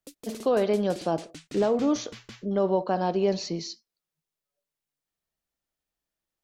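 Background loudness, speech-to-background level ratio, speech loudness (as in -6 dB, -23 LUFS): -45.5 LUFS, 18.5 dB, -27.0 LUFS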